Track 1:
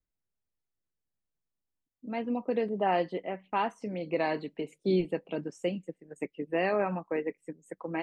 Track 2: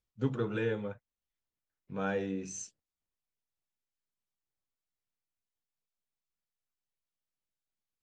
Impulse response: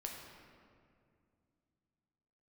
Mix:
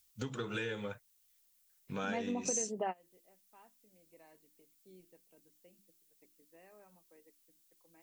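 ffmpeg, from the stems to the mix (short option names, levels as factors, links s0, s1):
-filter_complex "[0:a]bandreject=f=50:t=h:w=6,bandreject=f=100:t=h:w=6,bandreject=f=150:t=h:w=6,bandreject=f=200:t=h:w=6,bandreject=f=250:t=h:w=6,bandreject=f=300:t=h:w=6,bandreject=f=350:t=h:w=6,volume=1.06[s0];[1:a]acompressor=threshold=0.00891:ratio=3,crystalizer=i=9:c=0,volume=1.33,asplit=2[s1][s2];[s2]apad=whole_len=353928[s3];[s0][s3]sidechaingate=range=0.0224:threshold=0.00141:ratio=16:detection=peak[s4];[s4][s1]amix=inputs=2:normalize=0,acompressor=threshold=0.0224:ratio=5"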